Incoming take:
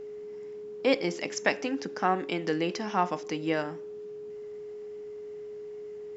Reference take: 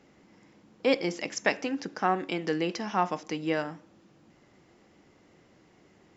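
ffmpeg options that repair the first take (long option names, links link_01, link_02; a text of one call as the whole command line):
ffmpeg -i in.wav -af "bandreject=frequency=420:width=30" out.wav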